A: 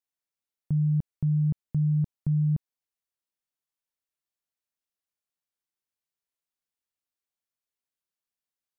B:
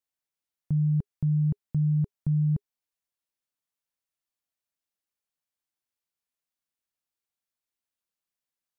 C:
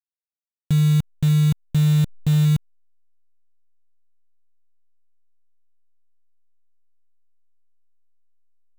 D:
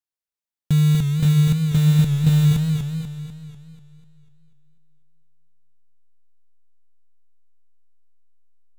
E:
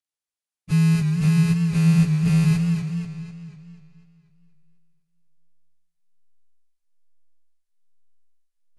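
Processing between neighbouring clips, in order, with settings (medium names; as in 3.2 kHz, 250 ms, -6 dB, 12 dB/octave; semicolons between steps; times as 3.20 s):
band-stop 410 Hz
send-on-delta sampling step -33 dBFS; trim +7.5 dB
modulated delay 246 ms, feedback 52%, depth 105 cents, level -5.5 dB; trim +1 dB
frequency axis rescaled in octaves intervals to 86%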